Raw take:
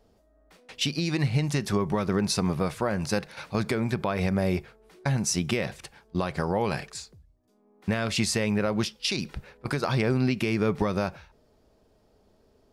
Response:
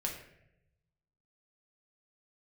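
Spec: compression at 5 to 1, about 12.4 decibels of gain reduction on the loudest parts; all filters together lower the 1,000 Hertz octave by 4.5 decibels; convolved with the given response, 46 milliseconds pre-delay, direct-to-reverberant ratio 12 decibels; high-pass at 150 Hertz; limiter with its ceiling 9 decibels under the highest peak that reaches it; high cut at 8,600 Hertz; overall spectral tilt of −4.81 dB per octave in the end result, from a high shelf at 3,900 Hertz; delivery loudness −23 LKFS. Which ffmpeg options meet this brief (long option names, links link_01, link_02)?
-filter_complex "[0:a]highpass=150,lowpass=8600,equalizer=frequency=1000:width_type=o:gain=-5.5,highshelf=frequency=3900:gain=-6,acompressor=threshold=-37dB:ratio=5,alimiter=level_in=6dB:limit=-24dB:level=0:latency=1,volume=-6dB,asplit=2[link_01][link_02];[1:a]atrim=start_sample=2205,adelay=46[link_03];[link_02][link_03]afir=irnorm=-1:irlink=0,volume=-14dB[link_04];[link_01][link_04]amix=inputs=2:normalize=0,volume=19dB"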